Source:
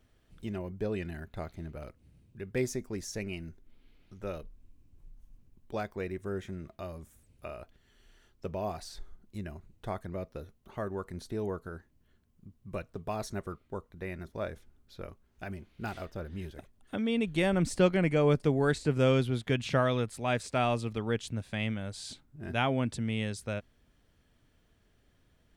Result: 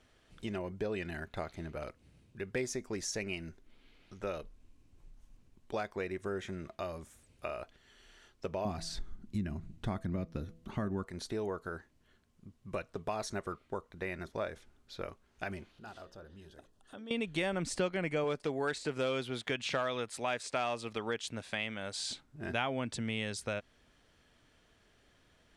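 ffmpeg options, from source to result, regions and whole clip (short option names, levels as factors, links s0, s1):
-filter_complex "[0:a]asettb=1/sr,asplit=3[s0][s1][s2];[s0]atrim=end=8.654[s3];[s1]atrim=start=8.65:end=11.05,asetpts=PTS-STARTPTS,afade=t=in:d=0.004:c=qsin,afade=t=out:st=2.396:d=0.004:c=qsin,lowshelf=f=340:t=q:w=1.5:g=11,bandreject=f=164.7:t=h:w=4,bandreject=f=329.4:t=h:w=4,bandreject=f=494.1:t=h:w=4,bandreject=f=658.8:t=h:w=4[s4];[s2]atrim=start=11.046[s5];[s3][s4]acrossfade=d=0.004:c1=hsin:c2=qsin[s6];[s6][s5]acrossfade=d=0.004:c1=qsin:c2=hsin,asettb=1/sr,asplit=3[s7][s8][s9];[s7]atrim=end=15.714[s10];[s8]atrim=start=15.71:end=17.11,asetpts=PTS-STARTPTS,afade=t=in:d=0.004:c=qsin,afade=t=out:st=1.396:d=0.004:c=qsin,equalizer=f=2200:w=4.6:g=-14,acompressor=threshold=0.00112:ratio=2:attack=3.2:release=140:knee=1:detection=peak,bandreject=f=60:t=h:w=6,bandreject=f=120:t=h:w=6,bandreject=f=180:t=h:w=6,bandreject=f=240:t=h:w=6,bandreject=f=300:t=h:w=6,bandreject=f=360:t=h:w=6,bandreject=f=420:t=h:w=6,bandreject=f=480:t=h:w=6,bandreject=f=540:t=h:w=6[s11];[s9]atrim=start=17.106[s12];[s10][s11]acrossfade=d=0.004:c1=hsin:c2=qsin[s13];[s13][s12]acrossfade=d=0.004:c1=qsin:c2=hsin,asettb=1/sr,asplit=3[s14][s15][s16];[s14]atrim=end=18.244[s17];[s15]atrim=start=18.24:end=21.99,asetpts=PTS-STARTPTS,afade=t=in:d=0.004:c=qsin,afade=t=out:st=3.746:d=0.004:c=qsin,lowshelf=f=190:g=-9.5,volume=10.6,asoftclip=hard,volume=0.0944[s18];[s16]atrim=start=21.986[s19];[s17][s18]acrossfade=d=0.004:c1=hsin:c2=qsin[s20];[s20][s19]acrossfade=d=0.004:c1=qsin:c2=hsin,lowpass=8900,lowshelf=f=300:g=-10.5,acompressor=threshold=0.00891:ratio=2.5,volume=2.11"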